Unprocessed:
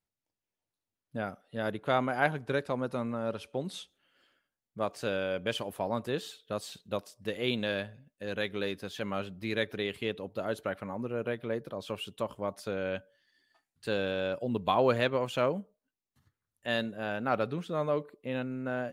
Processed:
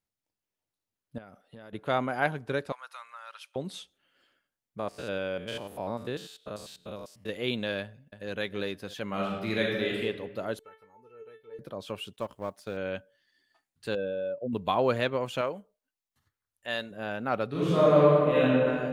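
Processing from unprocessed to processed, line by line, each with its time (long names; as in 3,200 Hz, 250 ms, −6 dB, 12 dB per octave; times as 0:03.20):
0:01.18–0:01.73: downward compressor 12 to 1, threshold −43 dBFS
0:02.72–0:03.56: high-pass filter 1,100 Hz 24 dB per octave
0:04.79–0:07.29: spectrum averaged block by block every 100 ms
0:07.81–0:08.31: delay throw 310 ms, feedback 40%, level −8 dB
0:09.07–0:10.01: thrown reverb, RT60 1.3 s, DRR −2.5 dB
0:10.59–0:11.59: tuned comb filter 440 Hz, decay 0.21 s, mix 100%
0:12.13–0:12.77: mu-law and A-law mismatch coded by A
0:13.95–0:14.53: expanding power law on the bin magnitudes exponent 1.8
0:15.41–0:16.91: parametric band 170 Hz −9.5 dB 2.4 octaves
0:17.49–0:18.47: thrown reverb, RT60 2.3 s, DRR −11.5 dB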